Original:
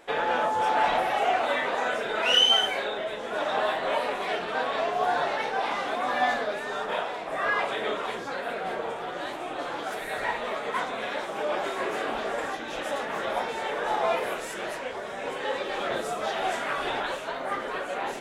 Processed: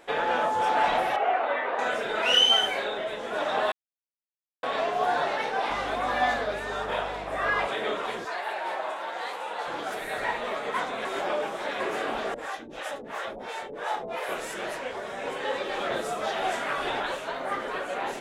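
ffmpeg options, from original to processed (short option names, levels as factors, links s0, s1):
-filter_complex "[0:a]asettb=1/sr,asplit=3[s0][s1][s2];[s0]atrim=end=1.164[s3];[s1]atrim=start=1.16:end=1.79,asetpts=PTS-STARTPTS,afade=t=in:d=0.004:c=qsin,afade=t=out:st=0.626:d=0.004:c=qsin,highpass=350,lowpass=2100[s4];[s2]atrim=start=1.786[s5];[s3][s4]acrossfade=d=0.004:c1=hsin:c2=qsin[s6];[s6][s5]acrossfade=d=0.004:c1=qsin:c2=hsin,asettb=1/sr,asplit=3[s7][s8][s9];[s7]atrim=end=5.704[s10];[s8]atrim=start=5.7:end=7.67,asetpts=PTS-STARTPTS,afade=t=in:d=0.004:c=qsin,afade=t=out:st=1.966:d=0.004:c=qsin,aeval=exprs='val(0)+0.00562*(sin(2*PI*50*n/s)+sin(2*PI*2*50*n/s)/2+sin(2*PI*3*50*n/s)/3+sin(2*PI*4*50*n/s)/4+sin(2*PI*5*50*n/s)/5)':c=same[s11];[s9]atrim=start=7.666[s12];[s10][s11]acrossfade=d=0.004:c1=hsin:c2=qsin[s13];[s13][s12]acrossfade=d=0.004:c1=qsin:c2=hsin,asettb=1/sr,asplit=3[s14][s15][s16];[s14]atrim=end=8.254[s17];[s15]atrim=start=8.25:end=9.67,asetpts=PTS-STARTPTS,afade=t=in:d=0.004:c=qsin,afade=t=out:st=1.416:d=0.004:c=qsin,afreqshift=170[s18];[s16]atrim=start=9.666[s19];[s17][s18]acrossfade=d=0.004:c1=hsin:c2=qsin[s20];[s20][s19]acrossfade=d=0.004:c1=qsin:c2=hsin,asettb=1/sr,asplit=3[s21][s22][s23];[s21]atrim=end=12.344[s24];[s22]atrim=start=12.34:end=14.29,asetpts=PTS-STARTPTS,afade=t=in:d=0.004:c=qsin,afade=t=out:st=1.946:d=0.004:c=qsin,acrossover=split=470[s25][s26];[s25]aeval=exprs='val(0)*(1-1/2+1/2*cos(2*PI*2.9*n/s))':c=same[s27];[s26]aeval=exprs='val(0)*(1-1/2-1/2*cos(2*PI*2.9*n/s))':c=same[s28];[s27][s28]amix=inputs=2:normalize=0[s29];[s23]atrim=start=14.286[s30];[s24][s29]acrossfade=d=0.004:c1=hsin:c2=qsin[s31];[s31][s30]acrossfade=d=0.004:c1=qsin:c2=hsin,asplit=5[s32][s33][s34][s35][s36];[s32]atrim=end=3.72,asetpts=PTS-STARTPTS,afade=t=out:st=3.716:d=0.004:c=hsin[s37];[s33]atrim=start=3.72:end=4.63,asetpts=PTS-STARTPTS,volume=0[s38];[s34]atrim=start=4.63:end=11.052,asetpts=PTS-STARTPTS,afade=t=in:d=0.004:c=hsin[s39];[s35]atrim=start=11.048:end=11.802,asetpts=PTS-STARTPTS,areverse[s40];[s36]atrim=start=11.798[s41];[s37][s38][s39]concat=n=3:v=0:a=1[s42];[s42][s40]acrossfade=d=0.004:c1=hsin:c2=hsin[s43];[s43][s41]acrossfade=d=0.004:c1=hsin:c2=hsin"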